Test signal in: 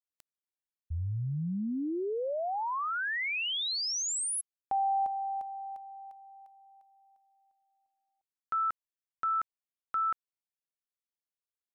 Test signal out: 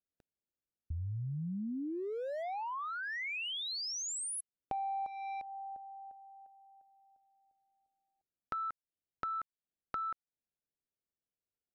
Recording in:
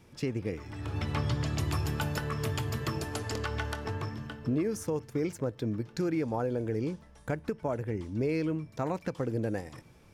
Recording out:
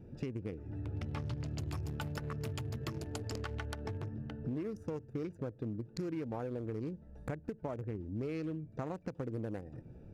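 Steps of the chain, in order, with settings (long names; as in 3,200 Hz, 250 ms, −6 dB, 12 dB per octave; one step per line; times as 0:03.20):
adaptive Wiener filter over 41 samples
downward compressor 3 to 1, threshold −48 dBFS
level +7 dB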